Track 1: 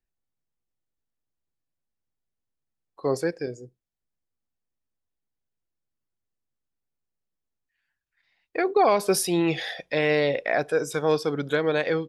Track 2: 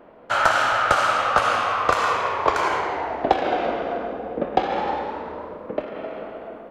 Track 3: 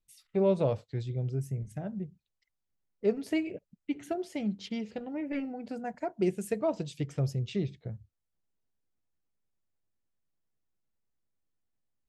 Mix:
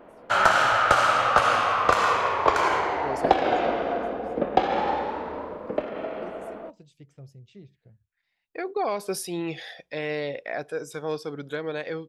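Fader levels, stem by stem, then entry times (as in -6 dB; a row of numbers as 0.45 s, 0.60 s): -7.5 dB, -0.5 dB, -16.0 dB; 0.00 s, 0.00 s, 0.00 s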